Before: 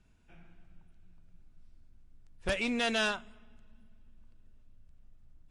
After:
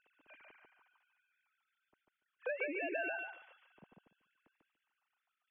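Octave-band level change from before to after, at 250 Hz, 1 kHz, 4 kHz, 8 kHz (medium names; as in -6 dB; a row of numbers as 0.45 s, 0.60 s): -12.0 dB, -9.0 dB, under -20 dB, under -30 dB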